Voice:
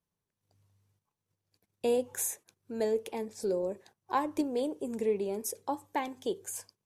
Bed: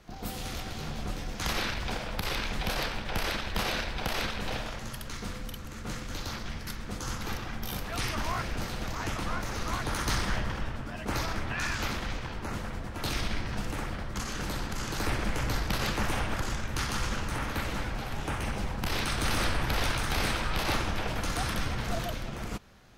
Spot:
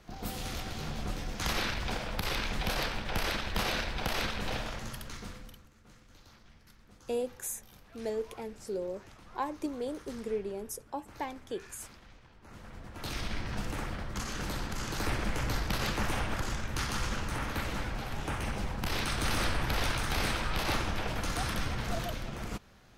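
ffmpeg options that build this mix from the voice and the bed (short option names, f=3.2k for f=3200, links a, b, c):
-filter_complex "[0:a]adelay=5250,volume=-4.5dB[a];[1:a]volume=18dB,afade=t=out:st=4.8:d=0.92:silence=0.1,afade=t=in:st=12.4:d=1.16:silence=0.112202[b];[a][b]amix=inputs=2:normalize=0"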